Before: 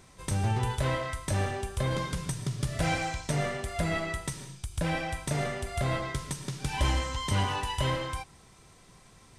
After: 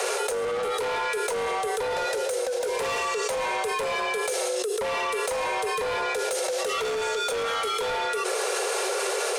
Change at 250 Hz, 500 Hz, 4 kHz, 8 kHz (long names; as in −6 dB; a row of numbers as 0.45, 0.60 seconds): −6.5, +10.5, +6.0, +8.0 decibels